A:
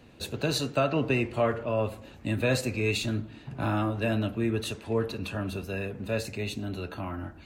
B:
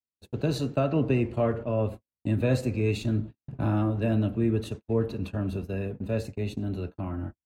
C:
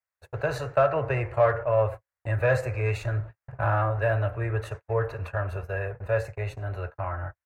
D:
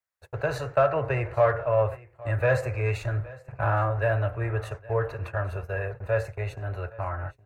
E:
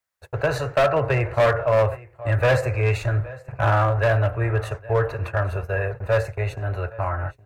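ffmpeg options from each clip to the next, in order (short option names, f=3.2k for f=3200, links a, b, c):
-af "tiltshelf=f=730:g=6.5,agate=range=-57dB:threshold=-32dB:ratio=16:detection=peak,volume=-2dB"
-filter_complex "[0:a]firequalizer=gain_entry='entry(120,0);entry(220,-28);entry(380,-7);entry(540,6);entry(800,7);entry(1700,13);entry(3300,-9);entry(5800,-4)':delay=0.05:min_phase=1,asplit=2[a][b];[b]asoftclip=type=tanh:threshold=-20dB,volume=-8dB[c];[a][c]amix=inputs=2:normalize=0,volume=-1.5dB"
-af "aecho=1:1:816:0.0891"
-af "volume=19.5dB,asoftclip=hard,volume=-19.5dB,volume=6dB"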